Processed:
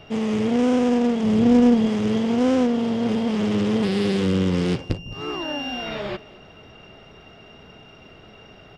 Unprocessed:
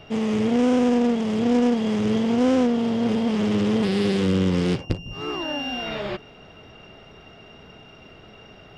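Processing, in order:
0:01.23–0:01.87: low-shelf EQ 250 Hz +9.5 dB
on a send: single-tap delay 215 ms −21.5 dB

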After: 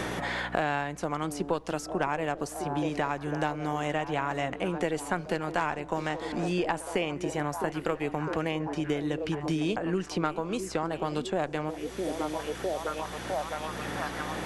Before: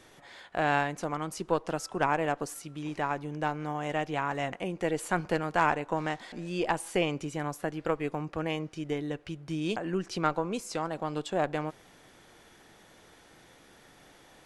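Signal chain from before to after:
0:06.97–0:07.40: spectral tilt +1.5 dB per octave
mains hum 60 Hz, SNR 24 dB
echo through a band-pass that steps 657 ms, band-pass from 300 Hz, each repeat 0.7 octaves, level −8 dB
multiband upward and downward compressor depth 100%

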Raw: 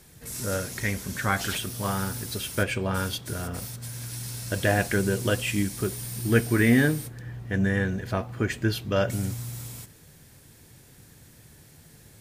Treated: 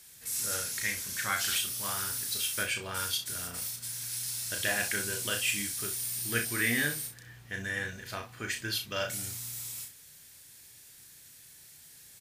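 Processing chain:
tilt shelving filter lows −10 dB, about 1,200 Hz
ambience of single reflections 34 ms −5.5 dB, 63 ms −12.5 dB
level −7.5 dB

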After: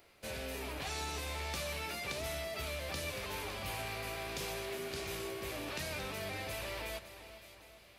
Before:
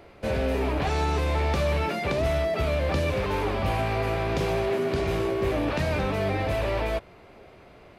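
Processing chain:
first-order pre-emphasis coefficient 0.9
echo with a time of its own for lows and highs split 2,400 Hz, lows 399 ms, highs 560 ms, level −12.5 dB
level +1.5 dB

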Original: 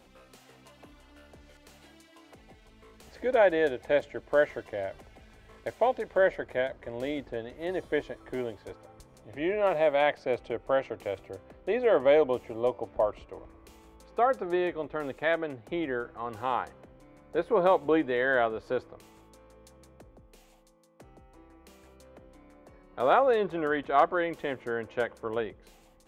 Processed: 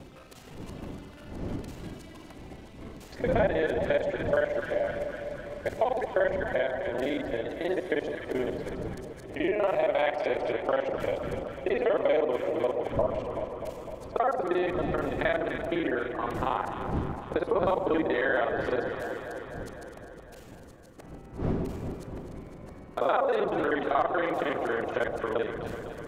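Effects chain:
reversed piece by piece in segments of 39 ms
wind on the microphone 240 Hz −41 dBFS
low-shelf EQ 220 Hz −3.5 dB
delay that swaps between a low-pass and a high-pass 126 ms, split 980 Hz, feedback 82%, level −9.5 dB
on a send at −18 dB: convolution reverb RT60 0.40 s, pre-delay 3 ms
on the sum: downward compressor 2.5 to 1, threshold −30 dBFS, peak gain reduction 9.5 dB
level +5 dB

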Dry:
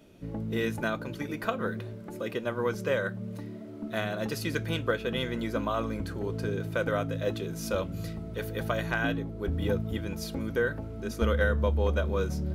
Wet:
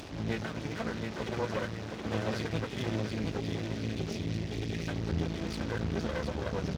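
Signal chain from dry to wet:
linear delta modulator 32 kbit/s, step −37 dBFS
mains-hum notches 60/120/180/240 Hz
downward compressor 6 to 1, threshold −28 dBFS, peak gain reduction 7 dB
time stretch by phase vocoder 0.54×
time-frequency box erased 0:02.67–0:04.88, 450–1,800 Hz
on a send: repeating echo 720 ms, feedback 50%, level −5 dB
on the sum: half-wave rectification
high-pass filter 76 Hz
low-shelf EQ 170 Hz +8.5 dB
level +5 dB

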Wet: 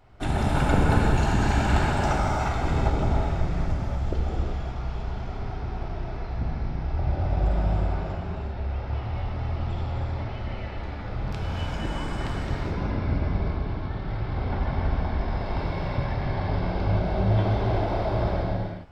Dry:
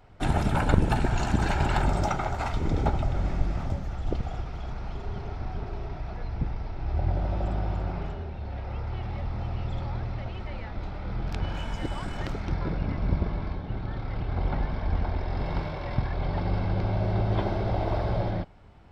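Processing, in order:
reverb whose tail is shaped and stops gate 430 ms flat, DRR −3.5 dB
level −2 dB

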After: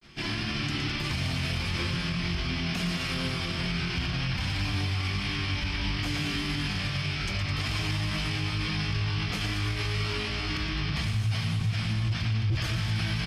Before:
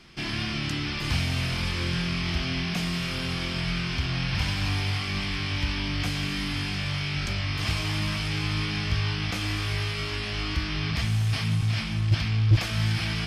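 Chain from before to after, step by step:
granular cloud 115 ms, grains 20 per second, spray 17 ms, pitch spread up and down by 0 semitones
multi-tap delay 115/210 ms −7.5/−10.5 dB
brickwall limiter −22 dBFS, peak gain reduction 8.5 dB
level +1.5 dB

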